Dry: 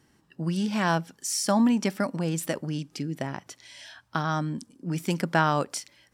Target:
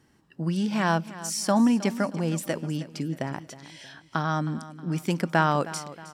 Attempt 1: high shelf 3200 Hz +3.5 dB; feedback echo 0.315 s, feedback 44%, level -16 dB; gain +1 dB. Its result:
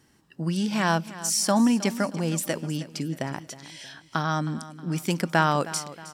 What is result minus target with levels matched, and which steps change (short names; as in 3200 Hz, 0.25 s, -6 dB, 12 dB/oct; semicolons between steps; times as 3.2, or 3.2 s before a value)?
8000 Hz band +5.0 dB
change: high shelf 3200 Hz -3.5 dB